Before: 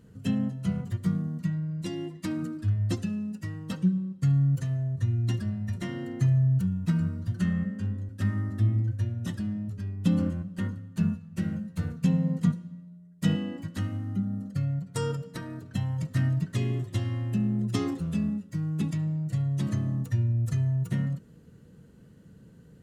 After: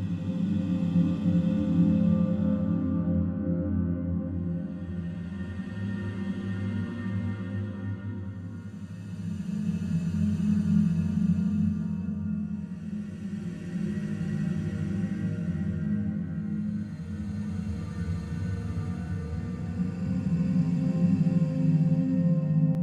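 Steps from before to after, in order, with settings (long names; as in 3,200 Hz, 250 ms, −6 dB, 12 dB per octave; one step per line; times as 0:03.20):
treble cut that deepens with the level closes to 1,400 Hz, closed at −23.5 dBFS
extreme stretch with random phases 10×, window 0.50 s, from 0:09.95
on a send: backwards echo 77 ms −3 dB
on the sum: level −1.5 dB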